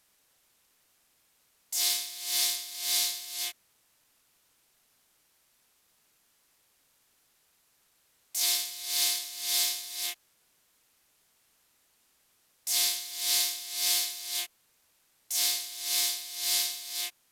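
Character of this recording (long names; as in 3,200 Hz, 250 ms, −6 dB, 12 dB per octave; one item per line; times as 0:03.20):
a quantiser's noise floor 12 bits, dither triangular
SBC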